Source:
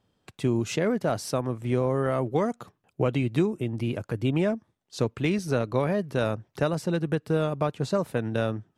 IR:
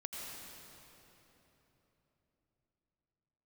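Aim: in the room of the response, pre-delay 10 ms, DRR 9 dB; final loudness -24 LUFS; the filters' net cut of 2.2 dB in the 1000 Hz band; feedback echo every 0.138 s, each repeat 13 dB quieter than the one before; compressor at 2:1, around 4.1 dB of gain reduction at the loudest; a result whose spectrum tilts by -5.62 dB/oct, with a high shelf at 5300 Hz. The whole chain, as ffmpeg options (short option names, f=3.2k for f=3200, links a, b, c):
-filter_complex "[0:a]equalizer=f=1k:t=o:g=-3.5,highshelf=f=5.3k:g=9,acompressor=threshold=-27dB:ratio=2,aecho=1:1:138|276|414:0.224|0.0493|0.0108,asplit=2[a][b];[1:a]atrim=start_sample=2205,adelay=10[c];[b][c]afir=irnorm=-1:irlink=0,volume=-8.5dB[d];[a][d]amix=inputs=2:normalize=0,volume=6.5dB"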